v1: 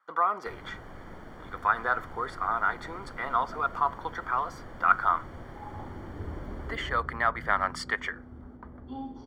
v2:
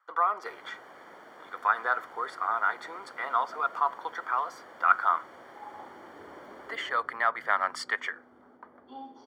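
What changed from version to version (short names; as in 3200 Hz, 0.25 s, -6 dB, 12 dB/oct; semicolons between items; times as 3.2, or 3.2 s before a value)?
master: add HPF 470 Hz 12 dB/oct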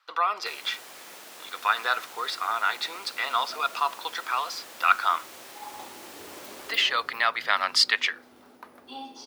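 speech: add resonant high shelf 5900 Hz -12 dB, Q 1.5; second sound +3.0 dB; master: remove polynomial smoothing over 41 samples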